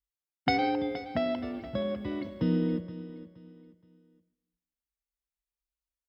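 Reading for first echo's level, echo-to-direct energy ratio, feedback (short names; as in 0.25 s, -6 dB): -15.0 dB, -14.5 dB, 31%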